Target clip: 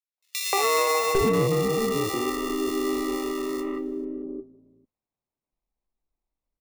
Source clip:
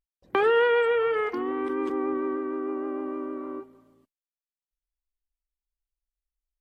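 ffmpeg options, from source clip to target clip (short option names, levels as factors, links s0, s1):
-filter_complex "[0:a]acrusher=samples=28:mix=1:aa=0.000001,acrossover=split=490|2500[s0][s1][s2];[s1]adelay=180[s3];[s0]adelay=800[s4];[s4][s3][s2]amix=inputs=3:normalize=0,volume=7.94,asoftclip=hard,volume=0.126,volume=1.5"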